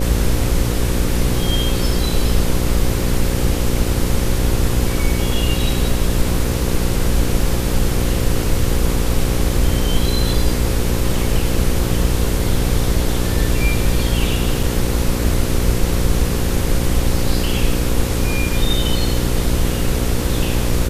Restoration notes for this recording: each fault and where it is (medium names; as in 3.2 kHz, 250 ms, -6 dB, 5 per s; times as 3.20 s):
buzz 60 Hz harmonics 9 -21 dBFS
14.63 s: dropout 3.4 ms